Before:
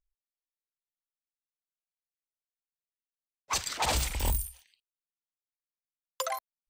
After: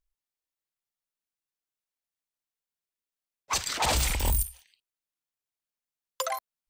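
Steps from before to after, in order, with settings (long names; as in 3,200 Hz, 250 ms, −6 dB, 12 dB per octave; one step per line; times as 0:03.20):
0:03.58–0:04.43: level that may fall only so fast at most 22 dB per second
level +2 dB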